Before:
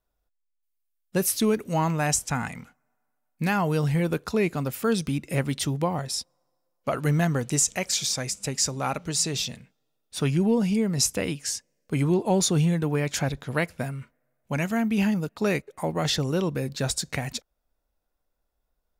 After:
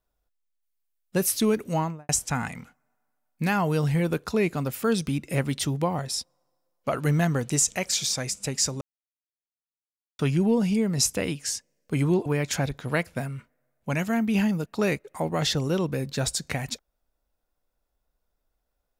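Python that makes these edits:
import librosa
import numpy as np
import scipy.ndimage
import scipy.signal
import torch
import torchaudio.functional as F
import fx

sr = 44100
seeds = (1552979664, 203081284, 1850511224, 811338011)

y = fx.studio_fade_out(x, sr, start_s=1.7, length_s=0.39)
y = fx.edit(y, sr, fx.silence(start_s=8.81, length_s=1.38),
    fx.cut(start_s=12.26, length_s=0.63), tone=tone)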